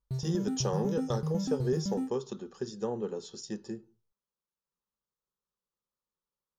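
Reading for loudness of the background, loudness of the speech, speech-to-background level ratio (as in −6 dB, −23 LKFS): −34.5 LKFS, −35.0 LKFS, −0.5 dB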